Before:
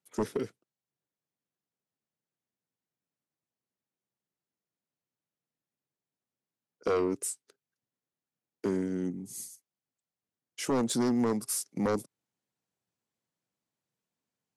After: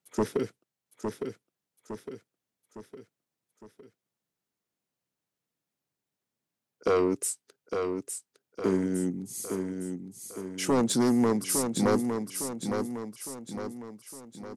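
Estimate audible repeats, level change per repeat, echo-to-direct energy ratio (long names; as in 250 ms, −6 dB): 4, −6.0 dB, −5.0 dB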